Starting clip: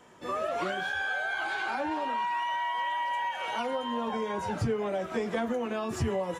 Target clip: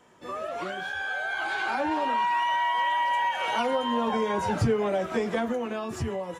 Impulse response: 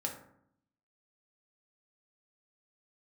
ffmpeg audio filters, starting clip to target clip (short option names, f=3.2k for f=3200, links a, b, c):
-af "dynaudnorm=f=330:g=9:m=8dB,volume=-2.5dB"